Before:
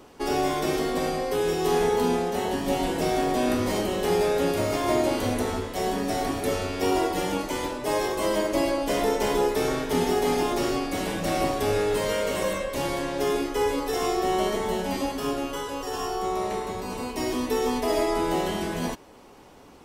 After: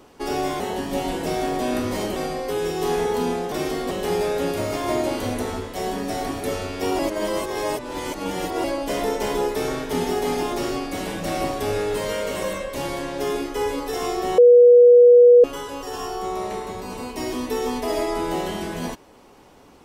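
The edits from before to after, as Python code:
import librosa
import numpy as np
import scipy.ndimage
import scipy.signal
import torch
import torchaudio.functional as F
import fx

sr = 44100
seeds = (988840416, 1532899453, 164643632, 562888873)

y = fx.edit(x, sr, fx.swap(start_s=0.6, length_s=0.39, other_s=2.35, other_length_s=1.56),
    fx.reverse_span(start_s=6.99, length_s=1.65),
    fx.bleep(start_s=14.38, length_s=1.06, hz=485.0, db=-7.0), tone=tone)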